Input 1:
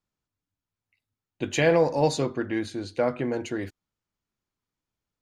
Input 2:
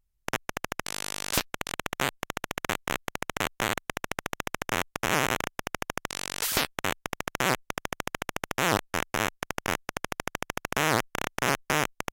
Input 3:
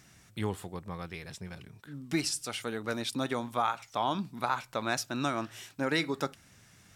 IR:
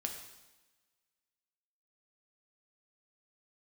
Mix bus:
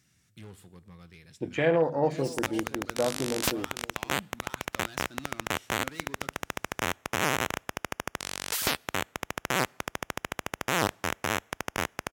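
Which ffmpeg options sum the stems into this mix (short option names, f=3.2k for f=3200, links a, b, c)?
-filter_complex "[0:a]asoftclip=type=hard:threshold=-12.5dB,bandreject=f=50:t=h:w=6,bandreject=f=100:t=h:w=6,bandreject=f=150:t=h:w=6,bandreject=f=200:t=h:w=6,bandreject=f=250:t=h:w=6,afwtdn=0.0355,volume=-3dB,asplit=2[a][b];[b]volume=-19.5dB[c];[1:a]adelay=2100,volume=-2dB,asplit=2[d][e];[e]volume=-24dB[f];[2:a]volume=31.5dB,asoftclip=hard,volume=-31.5dB,equalizer=f=780:w=0.81:g=-9,volume=-10dB,asplit=2[g][h];[h]volume=-10.5dB[i];[3:a]atrim=start_sample=2205[j];[f][i]amix=inputs=2:normalize=0[k];[k][j]afir=irnorm=-1:irlink=0[l];[c]aecho=0:1:519:1[m];[a][d][g][l][m]amix=inputs=5:normalize=0,highpass=50"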